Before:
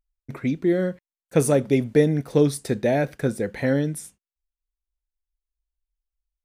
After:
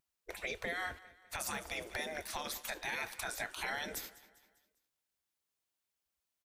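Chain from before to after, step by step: compression 6:1, threshold -24 dBFS, peak gain reduction 12 dB; spectral gate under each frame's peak -20 dB weak; 0.86–1.84 s: peaking EQ 68 Hz +13.5 dB 0.86 oct; feedback delay 200 ms, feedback 46%, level -19.5 dB; peak limiter -35 dBFS, peak gain reduction 11.5 dB; trim +8 dB

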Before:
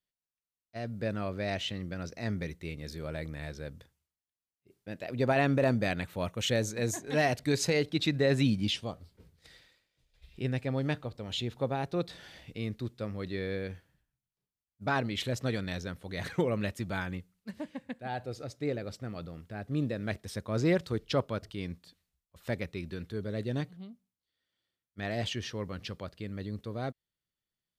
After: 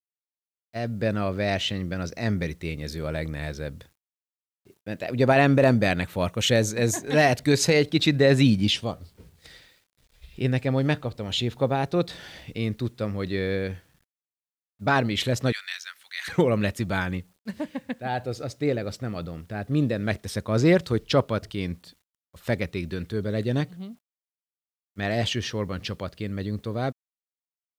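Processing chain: 15.52–16.28 s: high-pass 1.5 kHz 24 dB/octave; bit crusher 12-bit; trim +8 dB

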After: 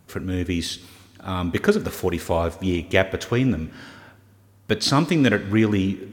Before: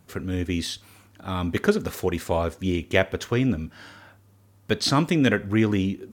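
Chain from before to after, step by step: plate-style reverb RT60 1.7 s, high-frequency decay 0.95×, DRR 16 dB; trim +2 dB

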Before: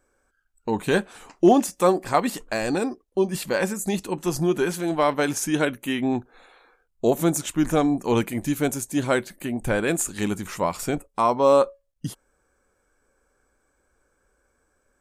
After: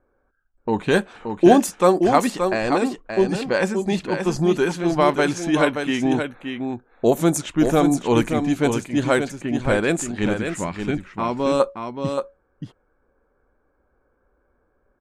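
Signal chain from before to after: 10.39–11.60 s: high-order bell 740 Hz -8.5 dB; level-controlled noise filter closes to 1.2 kHz, open at -16 dBFS; delay 576 ms -6.5 dB; trim +3 dB

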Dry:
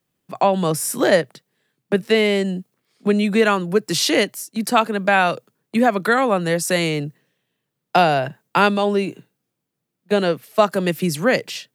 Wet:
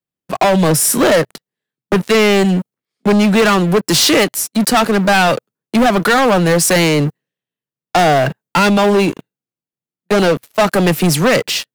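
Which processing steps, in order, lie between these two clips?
waveshaping leveller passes 5; trim -5.5 dB

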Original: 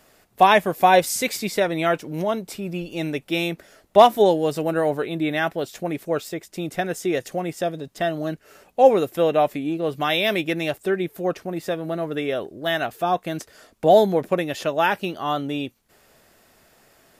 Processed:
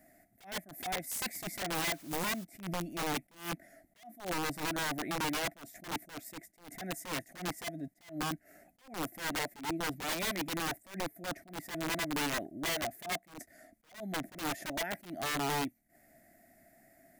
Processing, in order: FFT filter 100 Hz 0 dB, 180 Hz +4 dB, 300 Hz +9 dB, 470 Hz -15 dB, 680 Hz +11 dB, 1 kHz -21 dB, 2 kHz +7 dB, 2.9 kHz -17 dB, 11 kHz +4 dB; 1.73–2.43 s: added noise white -40 dBFS; compression 16:1, threshold -20 dBFS, peak gain reduction 20.5 dB; integer overflow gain 20 dB; attacks held to a fixed rise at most 160 dB/s; trim -9 dB

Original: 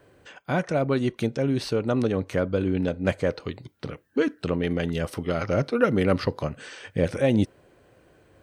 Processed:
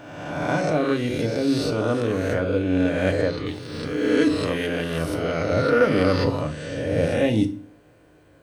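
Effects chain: reverse spectral sustain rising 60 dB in 1.42 s; 3.46–4.67 s: treble shelf 5.1 kHz +12 dB; FDN reverb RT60 0.37 s, low-frequency decay 1.55×, high-frequency decay 1×, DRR 6 dB; trim -2 dB

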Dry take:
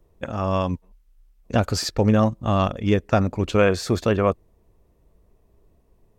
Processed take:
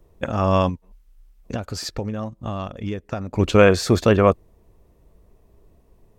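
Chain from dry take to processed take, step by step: 0.69–3.34 s: compression 5:1, threshold -31 dBFS, peak gain reduction 16 dB; trim +4.5 dB

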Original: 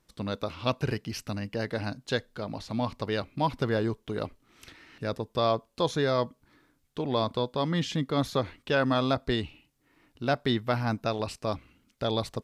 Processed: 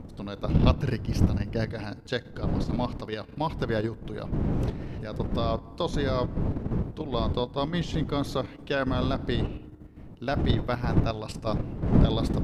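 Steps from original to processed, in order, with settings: wind noise 200 Hz -27 dBFS; 0.49–1.74 s: peaking EQ 81 Hz +5.5 dB 3 oct; FDN reverb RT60 1.8 s, low-frequency decay 1.3×, high-frequency decay 0.5×, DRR 19 dB; level held to a coarse grid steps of 9 dB; trim +1.5 dB

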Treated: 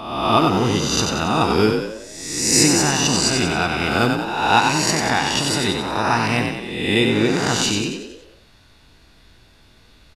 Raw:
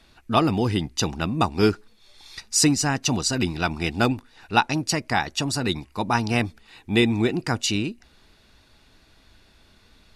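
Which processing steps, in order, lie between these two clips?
reverse spectral sustain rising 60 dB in 1.07 s; frequency-shifting echo 92 ms, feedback 50%, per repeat +39 Hz, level -5 dB

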